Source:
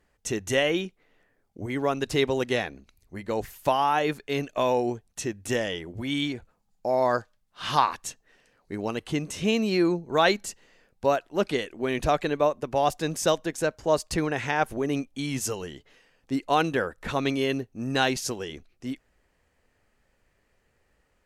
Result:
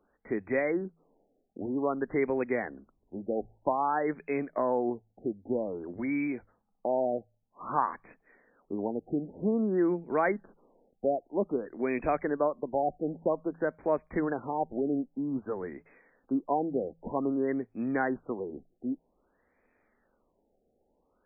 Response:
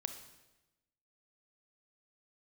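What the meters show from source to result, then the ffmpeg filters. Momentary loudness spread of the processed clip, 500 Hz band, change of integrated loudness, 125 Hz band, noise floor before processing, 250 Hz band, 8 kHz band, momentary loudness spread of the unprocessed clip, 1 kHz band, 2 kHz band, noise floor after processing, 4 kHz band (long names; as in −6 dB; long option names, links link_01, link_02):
9 LU, −4.0 dB, −4.5 dB, −9.0 dB, −70 dBFS, −2.0 dB, below −40 dB, 12 LU, −5.5 dB, −8.0 dB, −74 dBFS, below −40 dB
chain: -filter_complex "[0:a]lowshelf=frequency=170:width_type=q:width=1.5:gain=-9,bandreject=frequency=54.72:width_type=h:width=4,bandreject=frequency=109.44:width_type=h:width=4,bandreject=frequency=164.16:width_type=h:width=4,acrossover=split=150[link_01][link_02];[link_02]acompressor=threshold=-33dB:ratio=1.5[link_03];[link_01][link_03]amix=inputs=2:normalize=0,afftfilt=real='re*lt(b*sr/1024,800*pow(2600/800,0.5+0.5*sin(2*PI*0.52*pts/sr)))':imag='im*lt(b*sr/1024,800*pow(2600/800,0.5+0.5*sin(2*PI*0.52*pts/sr)))':win_size=1024:overlap=0.75"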